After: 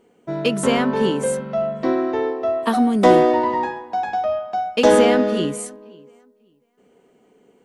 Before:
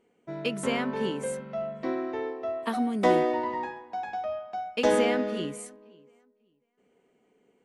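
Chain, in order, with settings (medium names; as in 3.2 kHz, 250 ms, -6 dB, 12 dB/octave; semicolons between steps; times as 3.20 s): peaking EQ 2.2 kHz -5 dB 0.62 oct; in parallel at -4.5 dB: saturation -21.5 dBFS, distortion -12 dB; on the sum: trim +7 dB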